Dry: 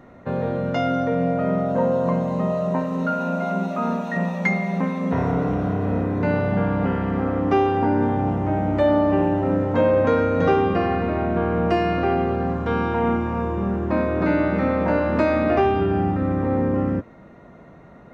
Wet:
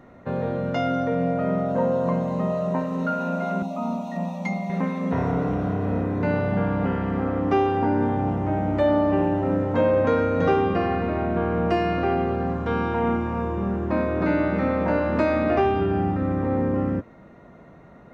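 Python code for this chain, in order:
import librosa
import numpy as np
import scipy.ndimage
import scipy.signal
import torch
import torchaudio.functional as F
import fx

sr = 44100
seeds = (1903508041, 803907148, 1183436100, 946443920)

y = fx.fixed_phaser(x, sr, hz=430.0, stages=6, at=(3.62, 4.7))
y = y * librosa.db_to_amplitude(-2.0)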